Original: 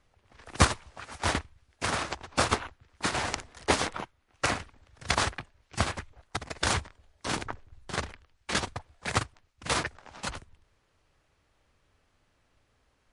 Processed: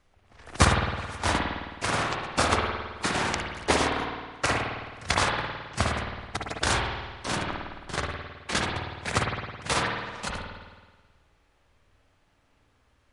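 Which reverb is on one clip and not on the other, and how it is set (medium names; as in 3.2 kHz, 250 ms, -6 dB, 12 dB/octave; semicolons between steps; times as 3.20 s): spring tank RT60 1.4 s, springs 53 ms, chirp 20 ms, DRR 0 dB; trim +1 dB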